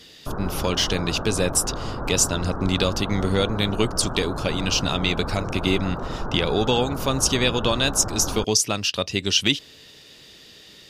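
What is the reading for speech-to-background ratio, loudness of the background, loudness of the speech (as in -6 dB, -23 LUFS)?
9.0 dB, -31.5 LUFS, -22.5 LUFS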